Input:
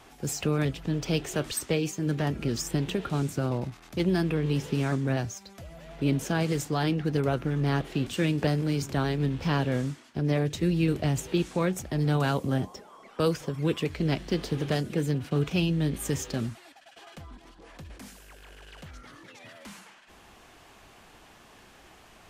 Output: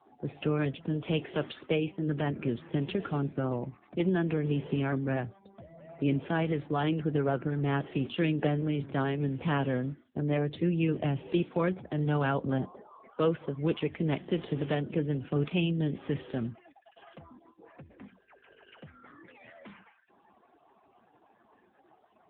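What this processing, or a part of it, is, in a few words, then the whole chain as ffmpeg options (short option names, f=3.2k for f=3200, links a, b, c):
mobile call with aggressive noise cancelling: -af "highpass=f=170:p=1,afftdn=nr=34:nf=-49" -ar 8000 -c:a libopencore_amrnb -b:a 7950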